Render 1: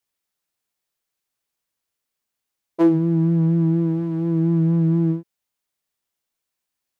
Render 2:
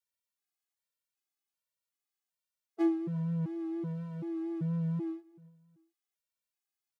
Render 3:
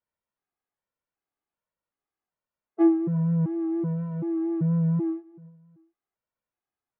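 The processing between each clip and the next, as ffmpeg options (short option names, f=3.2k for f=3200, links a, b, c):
-af "lowshelf=f=500:g=-8,aecho=1:1:351|702:0.0668|0.0247,afftfilt=real='re*gt(sin(2*PI*1.3*pts/sr)*(1-2*mod(floor(b*sr/1024/220),2)),0)':imag='im*gt(sin(2*PI*1.3*pts/sr)*(1-2*mod(floor(b*sr/1024/220),2)),0)':win_size=1024:overlap=0.75,volume=-6.5dB"
-af "lowpass=1.3k,volume=9dB"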